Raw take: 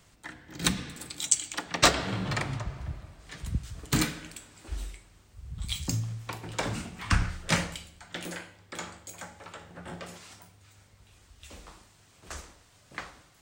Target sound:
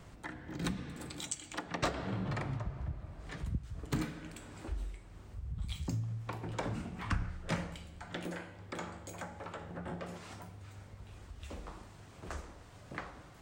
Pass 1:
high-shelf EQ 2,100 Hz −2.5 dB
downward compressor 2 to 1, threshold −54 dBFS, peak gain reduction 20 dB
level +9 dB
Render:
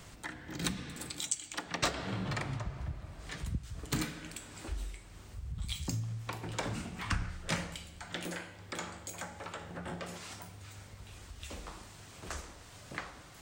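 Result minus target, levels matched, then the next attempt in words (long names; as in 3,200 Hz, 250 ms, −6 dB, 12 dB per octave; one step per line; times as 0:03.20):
4,000 Hz band +5.0 dB
high-shelf EQ 2,100 Hz −14 dB
downward compressor 2 to 1, threshold −54 dBFS, peak gain reduction 19 dB
level +9 dB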